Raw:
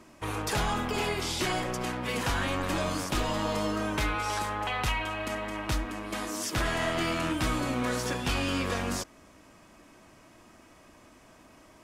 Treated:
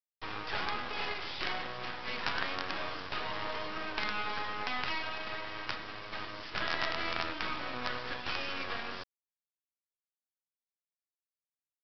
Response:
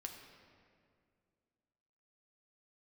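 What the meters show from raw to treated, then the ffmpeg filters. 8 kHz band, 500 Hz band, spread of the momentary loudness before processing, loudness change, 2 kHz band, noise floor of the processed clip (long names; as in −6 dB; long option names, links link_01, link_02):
−23.5 dB, −9.5 dB, 5 LU, −6.0 dB, −2.5 dB, below −85 dBFS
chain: -af "bandpass=frequency=1700:width_type=q:width=0.82:csg=0,aresample=11025,acrusher=bits=5:dc=4:mix=0:aa=0.000001,aresample=44100,volume=2.5dB"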